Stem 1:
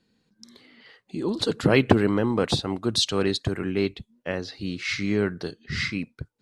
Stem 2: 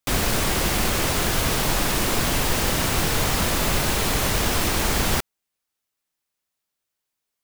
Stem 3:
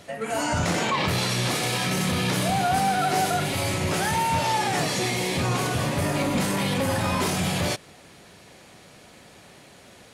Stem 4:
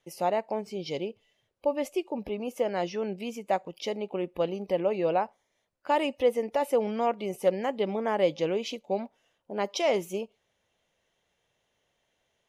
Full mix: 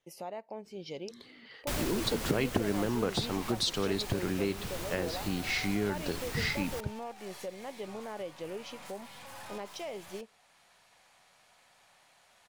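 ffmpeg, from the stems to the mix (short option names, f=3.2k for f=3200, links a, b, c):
-filter_complex "[0:a]adelay=650,volume=-1dB[a];[1:a]adelay=1600,volume=-10.5dB,afade=t=out:st=2.71:d=0.32:silence=0.421697[b];[2:a]lowshelf=f=550:t=q:w=1.5:g=-12.5,aeval=exprs='(tanh(50.1*val(0)+0.55)-tanh(0.55))/50.1':c=same,adelay=2450,volume=-10.5dB[c];[3:a]volume=-6dB[d];[c][d]amix=inputs=2:normalize=0,alimiter=level_in=7dB:limit=-24dB:level=0:latency=1:release=455,volume=-7dB,volume=0dB[e];[a][b]amix=inputs=2:normalize=0,acompressor=threshold=-29dB:ratio=3,volume=0dB[f];[e][f]amix=inputs=2:normalize=0"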